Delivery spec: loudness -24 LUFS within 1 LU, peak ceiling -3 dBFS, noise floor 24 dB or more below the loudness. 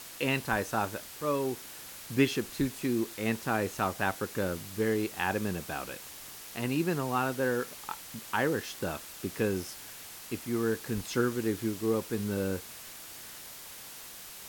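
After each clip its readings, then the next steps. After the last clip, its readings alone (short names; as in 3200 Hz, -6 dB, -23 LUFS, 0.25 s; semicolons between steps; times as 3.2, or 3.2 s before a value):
noise floor -46 dBFS; noise floor target -56 dBFS; loudness -32.0 LUFS; peak -13.0 dBFS; loudness target -24.0 LUFS
-> noise print and reduce 10 dB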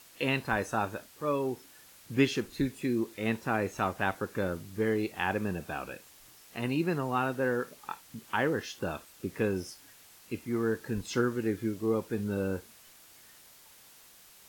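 noise floor -56 dBFS; loudness -32.0 LUFS; peak -13.0 dBFS; loudness target -24.0 LUFS
-> gain +8 dB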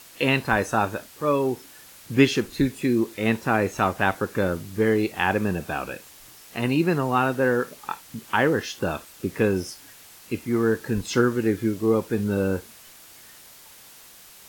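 loudness -24.0 LUFS; peak -5.0 dBFS; noise floor -48 dBFS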